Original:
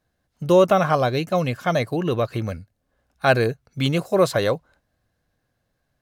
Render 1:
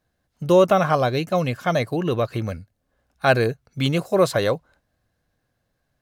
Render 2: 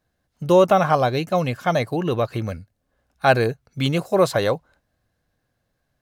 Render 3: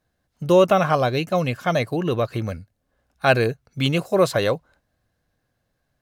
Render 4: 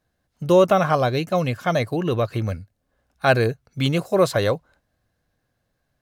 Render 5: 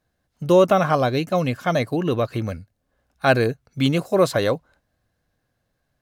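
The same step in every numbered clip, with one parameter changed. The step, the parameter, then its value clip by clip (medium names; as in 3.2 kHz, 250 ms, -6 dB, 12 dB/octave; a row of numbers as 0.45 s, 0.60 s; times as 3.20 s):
dynamic bell, frequency: 9 kHz, 840 Hz, 2.7 kHz, 100 Hz, 270 Hz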